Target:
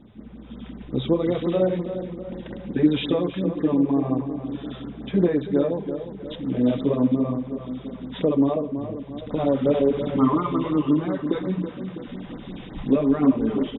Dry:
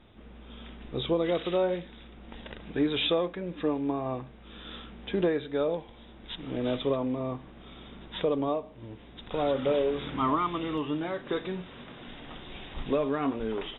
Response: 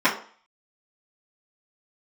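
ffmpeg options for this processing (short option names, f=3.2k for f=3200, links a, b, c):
-filter_complex "[0:a]equalizer=f=190:w=0.68:g=14,asplit=2[a][b];[b]adelay=326,lowpass=f=2k:p=1,volume=-9dB,asplit=2[c][d];[d]adelay=326,lowpass=f=2k:p=1,volume=0.53,asplit=2[e][f];[f]adelay=326,lowpass=f=2k:p=1,volume=0.53,asplit=2[g][h];[h]adelay=326,lowpass=f=2k:p=1,volume=0.53,asplit=2[i][j];[j]adelay=326,lowpass=f=2k:p=1,volume=0.53,asplit=2[k][l];[l]adelay=326,lowpass=f=2k:p=1,volume=0.53[m];[a][c][e][g][i][k][m]amix=inputs=7:normalize=0,asplit=2[n][o];[1:a]atrim=start_sample=2205[p];[o][p]afir=irnorm=-1:irlink=0,volume=-26dB[q];[n][q]amix=inputs=2:normalize=0,afftfilt=real='re*(1-between(b*sr/1024,230*pow(3200/230,0.5+0.5*sin(2*PI*5.6*pts/sr))/1.41,230*pow(3200/230,0.5+0.5*sin(2*PI*5.6*pts/sr))*1.41))':imag='im*(1-between(b*sr/1024,230*pow(3200/230,0.5+0.5*sin(2*PI*5.6*pts/sr))/1.41,230*pow(3200/230,0.5+0.5*sin(2*PI*5.6*pts/sr))*1.41))':win_size=1024:overlap=0.75,volume=-1.5dB"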